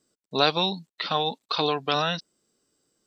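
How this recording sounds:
background noise floor −96 dBFS
spectral slope −2.0 dB per octave

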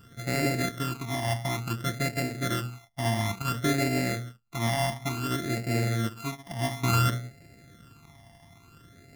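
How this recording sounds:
a buzz of ramps at a fixed pitch in blocks of 64 samples
phaser sweep stages 12, 0.57 Hz, lowest notch 430–1,100 Hz

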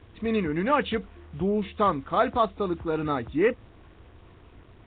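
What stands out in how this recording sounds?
a quantiser's noise floor 8 bits, dither none
Nellymoser

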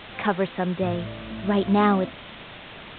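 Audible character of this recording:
a quantiser's noise floor 6 bits, dither triangular
mu-law

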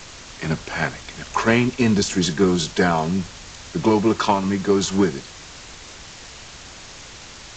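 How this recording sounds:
a quantiser's noise floor 6 bits, dither triangular
G.722

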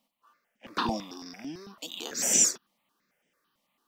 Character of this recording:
notches that jump at a steady rate 9 Hz 410–4,200 Hz

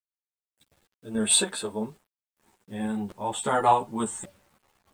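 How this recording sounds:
sample-and-hold tremolo 3.5 Hz, depth 75%
a quantiser's noise floor 10 bits, dither none
a shimmering, thickened sound

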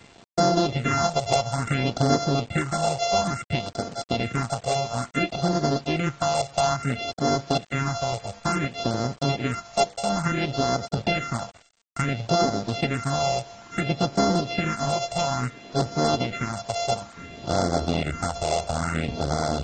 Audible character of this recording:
a buzz of ramps at a fixed pitch in blocks of 64 samples
phaser sweep stages 4, 0.58 Hz, lowest notch 260–2,600 Hz
a quantiser's noise floor 8 bits, dither none
AAC

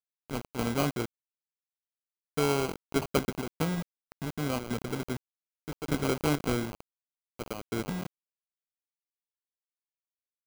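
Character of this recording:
aliases and images of a low sample rate 1,800 Hz, jitter 0%
chopped level 1.7 Hz, depth 65%, duty 80%
a quantiser's noise floor 6 bits, dither none

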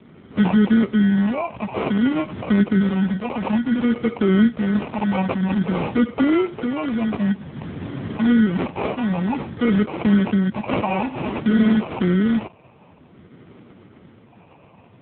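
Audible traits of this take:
a quantiser's noise floor 12 bits, dither none
phaser sweep stages 4, 0.53 Hz, lowest notch 350–1,300 Hz
aliases and images of a low sample rate 1,700 Hz, jitter 0%
AMR narrowband

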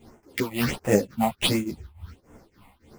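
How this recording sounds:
aliases and images of a low sample rate 7,000 Hz, jitter 20%
phaser sweep stages 6, 1.4 Hz, lowest notch 390–4,200 Hz
tremolo triangle 3.5 Hz, depth 95%
a shimmering, thickened sound

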